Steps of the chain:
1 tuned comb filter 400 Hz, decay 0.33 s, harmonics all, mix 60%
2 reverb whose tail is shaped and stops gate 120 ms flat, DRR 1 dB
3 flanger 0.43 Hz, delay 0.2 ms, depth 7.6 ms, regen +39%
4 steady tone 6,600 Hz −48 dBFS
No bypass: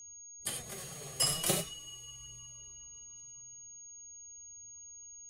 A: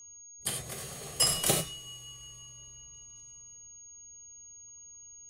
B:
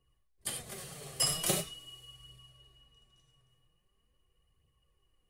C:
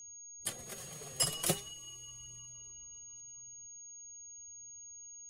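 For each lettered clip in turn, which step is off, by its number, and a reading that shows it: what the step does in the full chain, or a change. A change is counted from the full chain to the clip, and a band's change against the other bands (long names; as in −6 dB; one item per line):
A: 3, change in momentary loudness spread +4 LU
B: 4, change in momentary loudness spread +4 LU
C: 2, change in momentary loudness spread −2 LU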